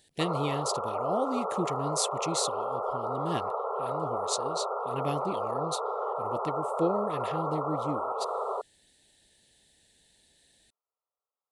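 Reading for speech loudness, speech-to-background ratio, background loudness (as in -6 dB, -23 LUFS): -34.5 LUFS, -2.0 dB, -32.5 LUFS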